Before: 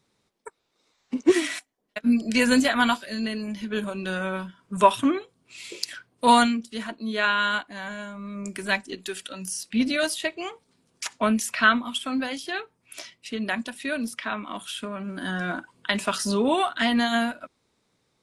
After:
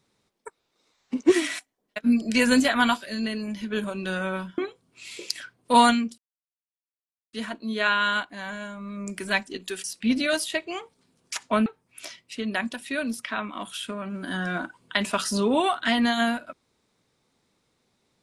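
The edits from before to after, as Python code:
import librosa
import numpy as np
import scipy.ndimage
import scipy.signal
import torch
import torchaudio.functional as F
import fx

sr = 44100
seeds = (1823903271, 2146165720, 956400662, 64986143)

y = fx.edit(x, sr, fx.cut(start_s=4.58, length_s=0.53),
    fx.insert_silence(at_s=6.71, length_s=1.15),
    fx.cut(start_s=9.22, length_s=0.32),
    fx.cut(start_s=11.36, length_s=1.24), tone=tone)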